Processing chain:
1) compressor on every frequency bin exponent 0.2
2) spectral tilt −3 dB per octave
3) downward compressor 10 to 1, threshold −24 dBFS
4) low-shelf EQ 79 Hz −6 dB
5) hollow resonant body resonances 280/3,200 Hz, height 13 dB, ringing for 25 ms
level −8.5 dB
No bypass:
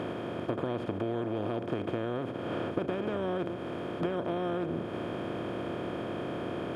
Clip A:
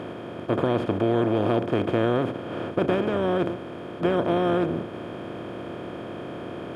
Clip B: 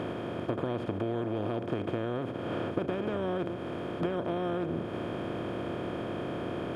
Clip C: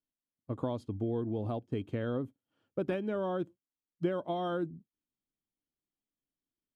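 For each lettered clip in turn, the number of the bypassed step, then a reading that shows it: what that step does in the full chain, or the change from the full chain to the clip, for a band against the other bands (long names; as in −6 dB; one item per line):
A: 3, average gain reduction 5.0 dB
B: 4, 125 Hz band +1.5 dB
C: 1, 4 kHz band −4.0 dB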